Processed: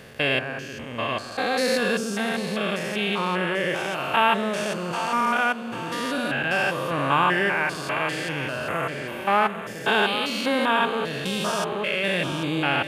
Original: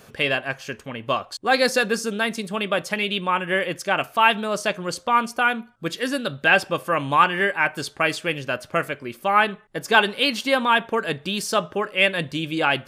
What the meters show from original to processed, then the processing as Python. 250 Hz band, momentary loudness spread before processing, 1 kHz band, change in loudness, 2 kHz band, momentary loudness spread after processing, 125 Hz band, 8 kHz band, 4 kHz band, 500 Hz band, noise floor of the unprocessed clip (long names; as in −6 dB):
+0.5 dB, 9 LU, −2.0 dB, −2.0 dB, −2.5 dB, 7 LU, +1.0 dB, −2.5 dB, −2.5 dB, −1.5 dB, −51 dBFS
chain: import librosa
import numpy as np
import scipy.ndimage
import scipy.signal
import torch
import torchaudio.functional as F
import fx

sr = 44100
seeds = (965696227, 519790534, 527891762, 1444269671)

y = fx.spec_steps(x, sr, hold_ms=200)
y = fx.echo_split(y, sr, split_hz=500.0, low_ms=142, high_ms=791, feedback_pct=52, wet_db=-10.5)
y = F.gain(torch.from_numpy(y), 2.0).numpy()